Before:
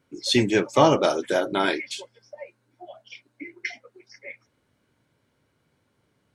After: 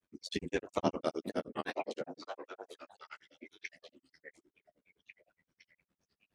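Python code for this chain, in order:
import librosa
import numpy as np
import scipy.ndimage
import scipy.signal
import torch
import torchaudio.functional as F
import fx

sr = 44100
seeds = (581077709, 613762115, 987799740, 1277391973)

y = x * np.sin(2.0 * np.pi * 43.0 * np.arange(len(x)) / sr)
y = fx.echo_stepped(y, sr, ms=485, hz=210.0, octaves=1.4, feedback_pct=70, wet_db=-2.0)
y = fx.granulator(y, sr, seeds[0], grain_ms=86.0, per_s=9.7, spray_ms=12.0, spread_st=3)
y = y * 10.0 ** (-8.0 / 20.0)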